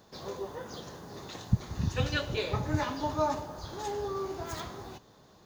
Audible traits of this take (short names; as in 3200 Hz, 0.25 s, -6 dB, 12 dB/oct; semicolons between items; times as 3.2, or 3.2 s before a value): noise floor -59 dBFS; spectral tilt -5.5 dB/oct